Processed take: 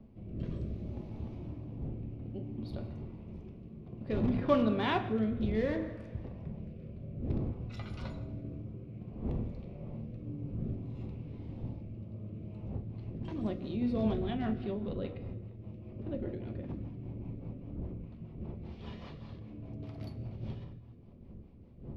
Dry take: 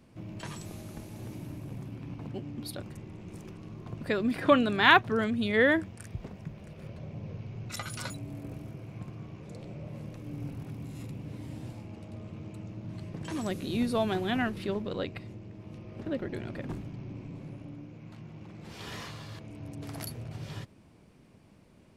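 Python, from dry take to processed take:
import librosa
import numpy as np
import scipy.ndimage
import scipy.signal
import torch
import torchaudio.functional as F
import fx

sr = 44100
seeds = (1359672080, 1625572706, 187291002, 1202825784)

p1 = fx.dmg_wind(x, sr, seeds[0], corner_hz=210.0, level_db=-40.0)
p2 = (np.mod(10.0 ** (19.0 / 20.0) * p1 + 1.0, 2.0) - 1.0) / 10.0 ** (19.0 / 20.0)
p3 = p1 + (p2 * 10.0 ** (-10.0 / 20.0))
p4 = fx.peak_eq(p3, sr, hz=1600.0, db=-9.5, octaves=0.78)
p5 = p4 + fx.echo_feedback(p4, sr, ms=161, feedback_pct=56, wet_db=-22.0, dry=0)
p6 = fx.rev_fdn(p5, sr, rt60_s=1.2, lf_ratio=1.2, hf_ratio=0.6, size_ms=82.0, drr_db=4.5)
p7 = fx.rotary_switch(p6, sr, hz=0.6, then_hz=5.0, switch_at_s=12.38)
p8 = fx.air_absorb(p7, sr, metres=300.0)
y = p8 * 10.0 ** (-5.0 / 20.0)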